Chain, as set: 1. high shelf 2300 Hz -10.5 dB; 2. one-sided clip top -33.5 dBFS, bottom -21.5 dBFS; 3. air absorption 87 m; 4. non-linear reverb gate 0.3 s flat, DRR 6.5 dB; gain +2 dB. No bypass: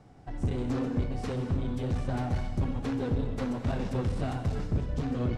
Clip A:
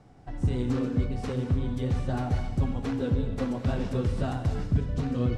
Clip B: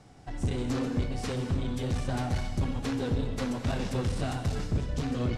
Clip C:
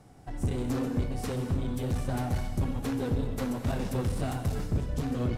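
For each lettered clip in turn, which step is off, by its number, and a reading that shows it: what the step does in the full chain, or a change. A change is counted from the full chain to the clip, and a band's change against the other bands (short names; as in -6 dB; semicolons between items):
2, distortion -8 dB; 1, 8 kHz band +8.5 dB; 3, 8 kHz band +8.0 dB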